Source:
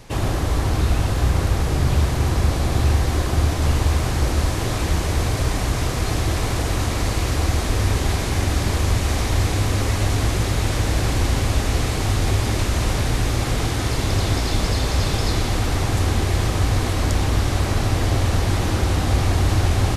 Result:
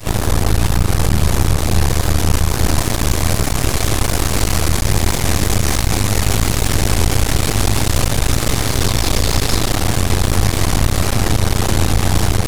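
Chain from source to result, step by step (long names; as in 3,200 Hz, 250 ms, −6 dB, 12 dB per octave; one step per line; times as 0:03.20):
tempo change 1.6×
high-shelf EQ 7,500 Hz +10.5 dB
backwards echo 37 ms −12.5 dB
half-wave rectification
boost into a limiter +10 dB
level −1 dB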